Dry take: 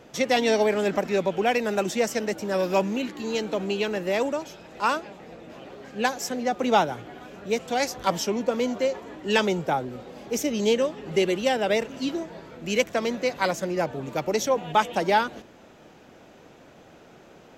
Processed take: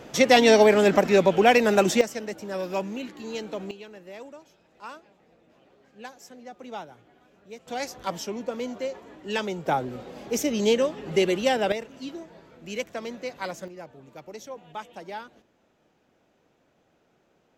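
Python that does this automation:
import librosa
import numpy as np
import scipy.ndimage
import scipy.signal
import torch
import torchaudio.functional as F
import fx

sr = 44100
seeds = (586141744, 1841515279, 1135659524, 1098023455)

y = fx.gain(x, sr, db=fx.steps((0.0, 5.5), (2.01, -6.0), (3.71, -17.0), (7.67, -6.5), (9.66, 0.5), (11.72, -8.5), (13.68, -16.0)))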